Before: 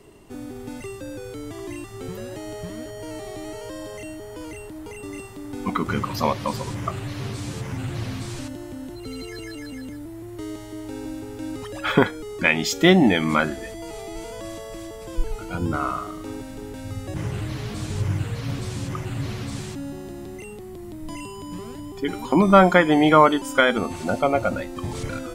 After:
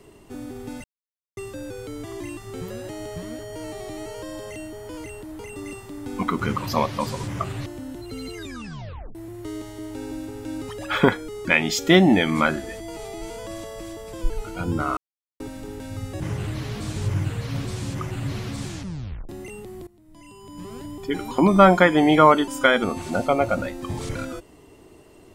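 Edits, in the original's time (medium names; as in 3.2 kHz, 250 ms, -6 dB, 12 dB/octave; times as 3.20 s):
0.84 s: insert silence 0.53 s
7.13–8.60 s: delete
9.30 s: tape stop 0.79 s
15.91–16.34 s: mute
19.61 s: tape stop 0.62 s
20.81–21.74 s: fade in quadratic, from -19.5 dB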